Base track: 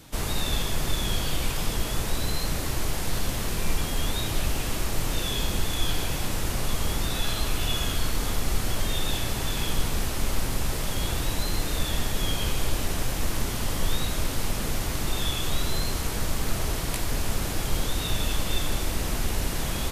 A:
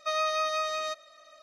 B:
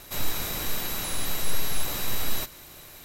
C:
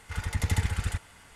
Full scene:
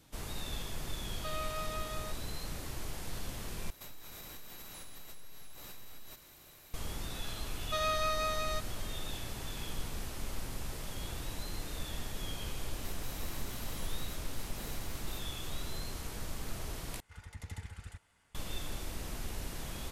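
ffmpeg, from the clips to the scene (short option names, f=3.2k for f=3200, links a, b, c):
-filter_complex "[1:a]asplit=2[a][b];[2:a]asplit=2[c][d];[0:a]volume=-13dB[e];[a]highshelf=f=4.1k:g=-10[f];[c]acompressor=threshold=-33dB:ratio=6:attack=3.2:release=140:knee=1:detection=peak[g];[d]asoftclip=type=tanh:threshold=-20.5dB[h];[e]asplit=3[i][j][k];[i]atrim=end=3.704[l];[g]atrim=end=3.04,asetpts=PTS-STARTPTS,volume=-10.5dB[m];[j]atrim=start=6.736:end=17.004[n];[3:a]atrim=end=1.35,asetpts=PTS-STARTPTS,volume=-17.5dB[o];[k]atrim=start=18.346[p];[f]atrim=end=1.42,asetpts=PTS-STARTPTS,volume=-11dB,afade=t=in:d=0.004:c=hsin,afade=t=out:st=1.416:d=0.004:c=hsin,adelay=1180[q];[b]atrim=end=1.42,asetpts=PTS-STARTPTS,volume=-4.5dB,afade=t=in:d=0.004:c=hsin,afade=t=out:st=1.416:d=0.004:c=hsin,adelay=7660[r];[h]atrim=end=3.04,asetpts=PTS-STARTPTS,volume=-16.5dB,afade=t=in:d=0.004:c=hsin,afade=t=out:st=3.036:d=0.004:c=hsin,adelay=12730[s];[l][m]acrossfade=d=0.004:c1=hsin:c2=hsin[t];[t][n]acrossfade=d=0.004:c1=hsin:c2=hsin[u];[u][o]acrossfade=d=0.004:c1=hsin:c2=hsin[v];[v][p]acrossfade=d=0.004:c1=hsin:c2=hsin[w];[w][q][r][s]amix=inputs=4:normalize=0"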